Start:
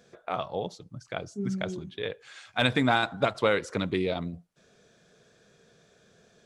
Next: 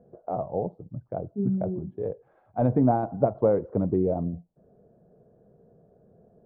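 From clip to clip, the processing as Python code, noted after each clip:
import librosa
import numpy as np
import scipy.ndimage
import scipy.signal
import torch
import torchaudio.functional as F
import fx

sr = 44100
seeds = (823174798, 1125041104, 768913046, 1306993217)

y = scipy.signal.sosfilt(scipy.signal.cheby1(3, 1.0, 730.0, 'lowpass', fs=sr, output='sos'), x)
y = fx.low_shelf(y, sr, hz=370.0, db=3.5)
y = y * 10.0 ** (3.0 / 20.0)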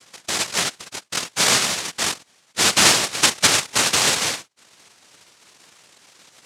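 y = x + 0.57 * np.pad(x, (int(4.6 * sr / 1000.0), 0))[:len(x)]
y = fx.noise_vocoder(y, sr, seeds[0], bands=1)
y = y * 10.0 ** (4.5 / 20.0)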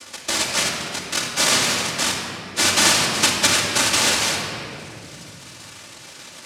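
y = fx.room_shoebox(x, sr, seeds[1], volume_m3=3200.0, walls='mixed', distance_m=2.5)
y = fx.band_squash(y, sr, depth_pct=40)
y = y * 10.0 ** (-2.5 / 20.0)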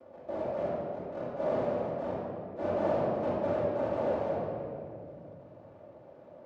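y = fx.transient(x, sr, attack_db=-6, sustain_db=6)
y = fx.lowpass_res(y, sr, hz=600.0, q=3.8)
y = y * 10.0 ** (-9.0 / 20.0)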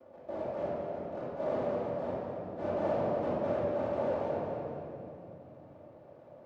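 y = fx.echo_split(x, sr, split_hz=310.0, low_ms=334, high_ms=227, feedback_pct=52, wet_db=-8)
y = y * 10.0 ** (-2.5 / 20.0)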